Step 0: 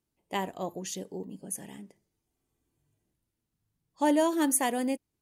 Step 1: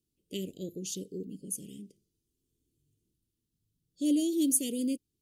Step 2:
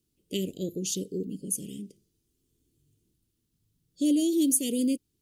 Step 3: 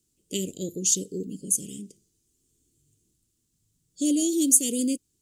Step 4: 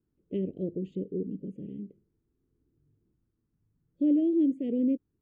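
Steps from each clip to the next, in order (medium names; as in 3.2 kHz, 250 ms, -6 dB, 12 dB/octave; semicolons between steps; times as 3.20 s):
inverse Chebyshev band-stop 770–1700 Hz, stop band 50 dB
compression 2:1, threshold -30 dBFS, peak gain reduction 5.5 dB; trim +6.5 dB
peaking EQ 7.4 kHz +13 dB 0.82 oct
inverse Chebyshev low-pass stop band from 5.3 kHz, stop band 60 dB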